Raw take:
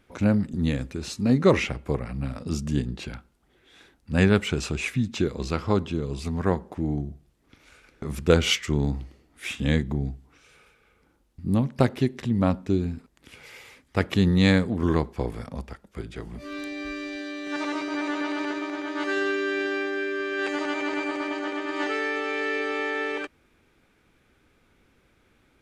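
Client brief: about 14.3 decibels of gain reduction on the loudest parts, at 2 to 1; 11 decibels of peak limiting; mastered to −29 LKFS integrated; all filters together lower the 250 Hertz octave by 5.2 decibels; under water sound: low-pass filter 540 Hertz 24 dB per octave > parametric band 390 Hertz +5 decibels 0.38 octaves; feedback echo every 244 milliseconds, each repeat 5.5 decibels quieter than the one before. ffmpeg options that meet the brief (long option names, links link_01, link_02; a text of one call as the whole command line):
ffmpeg -i in.wav -af "equalizer=frequency=250:width_type=o:gain=-8.5,acompressor=threshold=-42dB:ratio=2,alimiter=level_in=6.5dB:limit=-24dB:level=0:latency=1,volume=-6.5dB,lowpass=frequency=540:width=0.5412,lowpass=frequency=540:width=1.3066,equalizer=frequency=390:width_type=o:width=0.38:gain=5,aecho=1:1:244|488|732|976|1220|1464|1708:0.531|0.281|0.149|0.079|0.0419|0.0222|0.0118,volume=11dB" out.wav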